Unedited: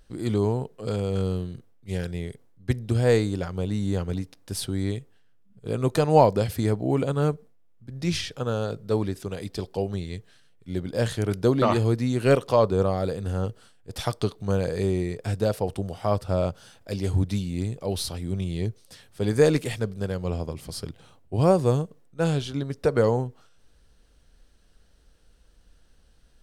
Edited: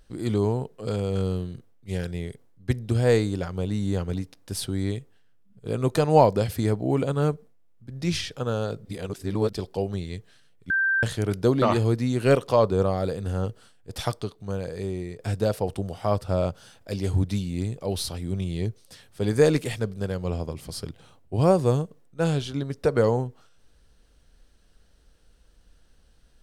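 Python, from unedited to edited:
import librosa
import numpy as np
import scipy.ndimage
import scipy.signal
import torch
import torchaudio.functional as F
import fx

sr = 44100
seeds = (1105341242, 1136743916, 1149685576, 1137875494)

y = fx.edit(x, sr, fx.reverse_span(start_s=8.85, length_s=0.68),
    fx.bleep(start_s=10.7, length_s=0.33, hz=1570.0, db=-19.5),
    fx.clip_gain(start_s=14.21, length_s=0.99, db=-6.0), tone=tone)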